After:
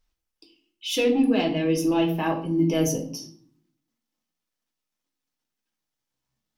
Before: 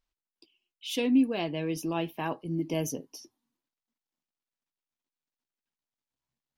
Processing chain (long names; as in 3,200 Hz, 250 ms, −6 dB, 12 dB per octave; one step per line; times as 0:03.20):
in parallel at −9 dB: sine wavefolder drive 4 dB, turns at −14.5 dBFS
on the sum: parametric band 5,600 Hz +4 dB 0.31 octaves
convolution reverb RT60 0.55 s, pre-delay 4 ms, DRR 1 dB
level −1.5 dB